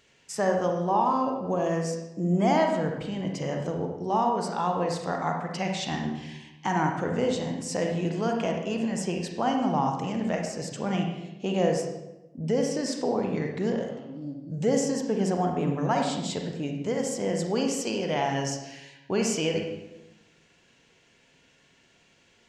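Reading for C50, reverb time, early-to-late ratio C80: 3.5 dB, 0.95 s, 6.5 dB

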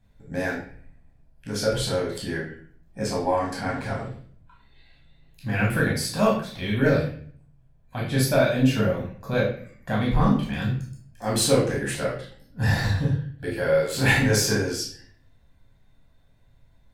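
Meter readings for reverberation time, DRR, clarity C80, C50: 0.50 s, -4.0 dB, 9.0 dB, 4.0 dB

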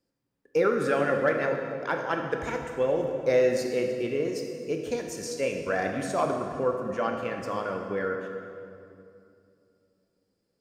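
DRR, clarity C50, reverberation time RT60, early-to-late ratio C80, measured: 2.5 dB, 4.0 dB, 2.6 s, 5.5 dB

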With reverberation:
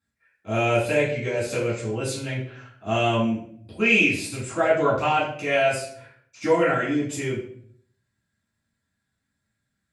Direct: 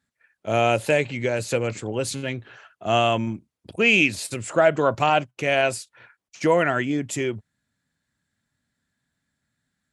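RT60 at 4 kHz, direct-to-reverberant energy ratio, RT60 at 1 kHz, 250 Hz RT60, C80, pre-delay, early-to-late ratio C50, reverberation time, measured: 0.45 s, -7.5 dB, 0.50 s, 0.75 s, 9.0 dB, 4 ms, 5.0 dB, 0.60 s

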